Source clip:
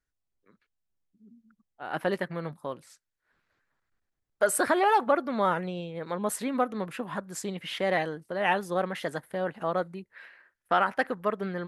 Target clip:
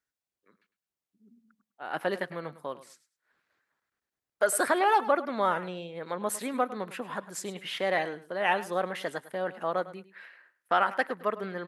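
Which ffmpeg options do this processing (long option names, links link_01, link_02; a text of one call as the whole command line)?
ffmpeg -i in.wav -filter_complex "[0:a]highpass=frequency=330:poles=1,asplit=2[link_01][link_02];[link_02]aecho=0:1:104|208:0.158|0.0317[link_03];[link_01][link_03]amix=inputs=2:normalize=0" out.wav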